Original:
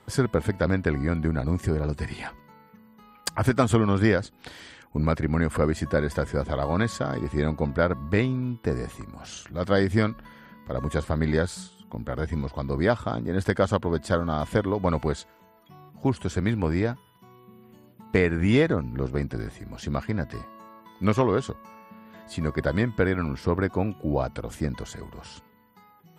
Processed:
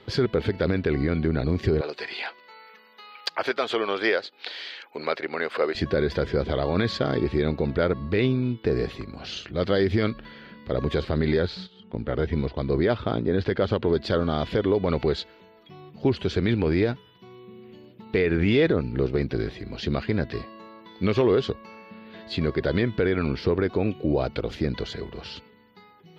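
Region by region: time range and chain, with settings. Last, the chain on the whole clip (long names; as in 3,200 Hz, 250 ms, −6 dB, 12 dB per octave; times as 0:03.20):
0:01.81–0:05.75: Chebyshev high-pass filter 670 Hz + one half of a high-frequency compander encoder only
0:11.40–0:13.81: noise gate −43 dBFS, range −9 dB + upward compression, threshold −44 dBFS + high-frequency loss of the air 120 metres
whole clip: graphic EQ with 15 bands 400 Hz +8 dB, 1,000 Hz −4 dB, 2,500 Hz +4 dB; brickwall limiter −14.5 dBFS; high shelf with overshoot 6,100 Hz −14 dB, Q 3; level +2 dB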